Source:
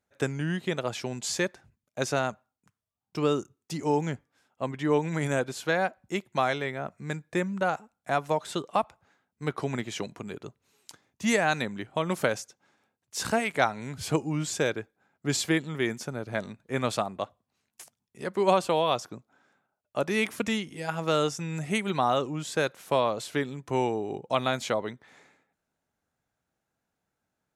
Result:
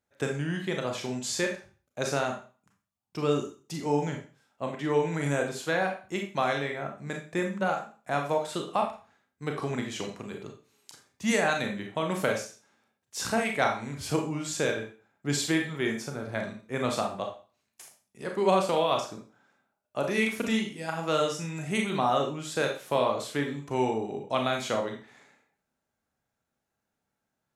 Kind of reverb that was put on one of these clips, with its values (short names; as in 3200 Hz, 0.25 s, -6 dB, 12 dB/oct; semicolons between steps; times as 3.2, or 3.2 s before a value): Schroeder reverb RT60 0.37 s, combs from 28 ms, DRR 2 dB; gain -2.5 dB